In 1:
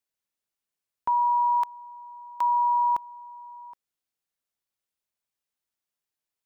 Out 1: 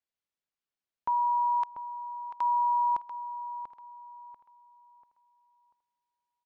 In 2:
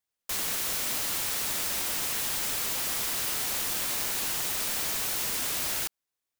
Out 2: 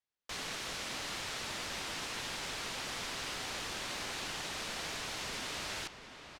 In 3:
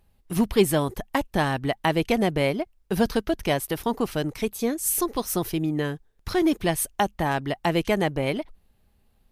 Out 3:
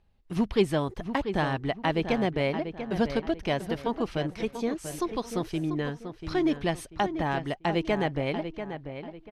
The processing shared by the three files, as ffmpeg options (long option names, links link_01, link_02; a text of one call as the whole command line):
ffmpeg -i in.wav -filter_complex "[0:a]lowpass=4900,asplit=2[link_01][link_02];[link_02]adelay=690,lowpass=frequency=2900:poles=1,volume=-9dB,asplit=2[link_03][link_04];[link_04]adelay=690,lowpass=frequency=2900:poles=1,volume=0.34,asplit=2[link_05][link_06];[link_06]adelay=690,lowpass=frequency=2900:poles=1,volume=0.34,asplit=2[link_07][link_08];[link_08]adelay=690,lowpass=frequency=2900:poles=1,volume=0.34[link_09];[link_03][link_05][link_07][link_09]amix=inputs=4:normalize=0[link_10];[link_01][link_10]amix=inputs=2:normalize=0,volume=-4dB" out.wav